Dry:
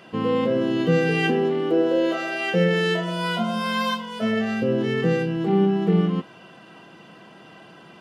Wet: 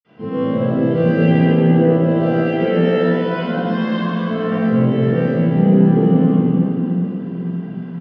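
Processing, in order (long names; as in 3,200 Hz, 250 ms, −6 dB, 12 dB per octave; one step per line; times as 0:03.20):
high-frequency loss of the air 180 metres
echo with shifted repeats 101 ms, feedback 31%, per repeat +69 Hz, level −6.5 dB
convolution reverb RT60 3.5 s, pre-delay 46 ms
level −8 dB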